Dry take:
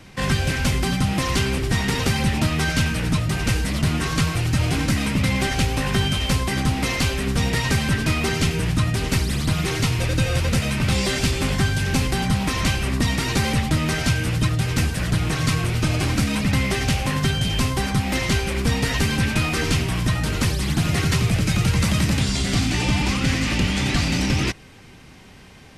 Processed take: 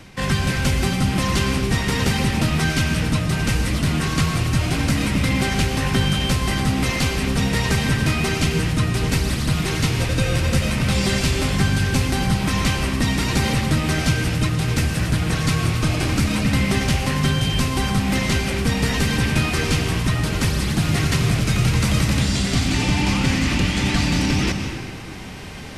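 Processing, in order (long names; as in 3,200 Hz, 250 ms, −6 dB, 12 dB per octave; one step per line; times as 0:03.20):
reversed playback
upward compression, threshold −25 dBFS
reversed playback
convolution reverb RT60 1.9 s, pre-delay 111 ms, DRR 5 dB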